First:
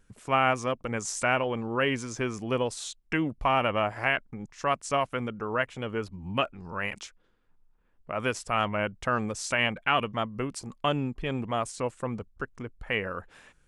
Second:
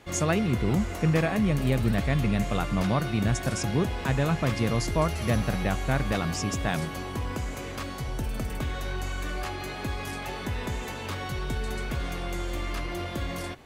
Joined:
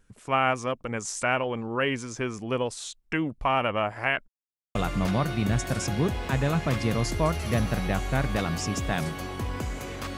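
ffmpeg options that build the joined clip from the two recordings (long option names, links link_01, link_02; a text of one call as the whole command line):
ffmpeg -i cue0.wav -i cue1.wav -filter_complex "[0:a]apad=whole_dur=10.17,atrim=end=10.17,asplit=2[link_01][link_02];[link_01]atrim=end=4.28,asetpts=PTS-STARTPTS,afade=type=out:start_time=4.276:duration=0.004:curve=hsin[link_03];[link_02]atrim=start=4.28:end=4.75,asetpts=PTS-STARTPTS,volume=0[link_04];[1:a]atrim=start=2.51:end=7.93,asetpts=PTS-STARTPTS,afade=type=in:duration=0.004:curve=hsin[link_05];[link_03][link_04][link_05]concat=n=3:v=0:a=1" out.wav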